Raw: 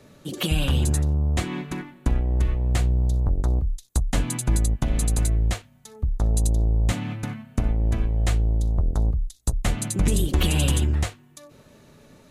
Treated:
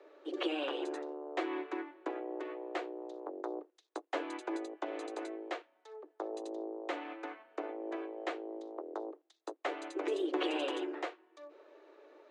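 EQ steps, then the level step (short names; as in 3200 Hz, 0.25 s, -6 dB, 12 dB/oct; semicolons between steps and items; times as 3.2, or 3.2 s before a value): steep high-pass 310 Hz 96 dB/oct; tape spacing loss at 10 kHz 38 dB; 0.0 dB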